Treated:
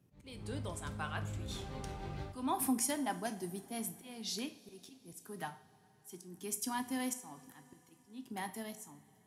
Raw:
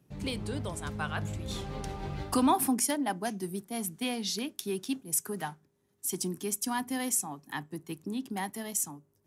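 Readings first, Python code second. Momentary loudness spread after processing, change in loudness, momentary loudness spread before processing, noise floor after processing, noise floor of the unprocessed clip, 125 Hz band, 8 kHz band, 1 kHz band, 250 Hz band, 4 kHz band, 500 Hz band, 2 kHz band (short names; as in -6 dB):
19 LU, -7.0 dB, 11 LU, -67 dBFS, -72 dBFS, -6.0 dB, -9.0 dB, -7.5 dB, -8.0 dB, -7.5 dB, -8.5 dB, -6.5 dB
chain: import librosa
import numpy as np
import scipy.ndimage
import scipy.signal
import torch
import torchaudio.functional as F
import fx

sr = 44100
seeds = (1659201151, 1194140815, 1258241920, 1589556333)

y = fx.dmg_noise_band(x, sr, seeds[0], low_hz=94.0, high_hz=200.0, level_db=-67.0)
y = fx.auto_swell(y, sr, attack_ms=308.0)
y = fx.rev_double_slope(y, sr, seeds[1], early_s=0.43, late_s=4.5, knee_db=-21, drr_db=7.5)
y = y * librosa.db_to_amplitude(-6.0)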